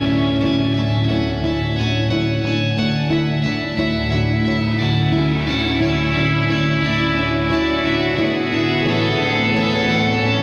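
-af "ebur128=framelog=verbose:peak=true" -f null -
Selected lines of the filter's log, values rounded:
Integrated loudness:
  I:         -18.0 LUFS
  Threshold: -27.9 LUFS
Loudness range:
  LRA:         1.6 LU
  Threshold: -38.1 LUFS
  LRA low:   -19.0 LUFS
  LRA high:  -17.4 LUFS
True peak:
  Peak:       -7.5 dBFS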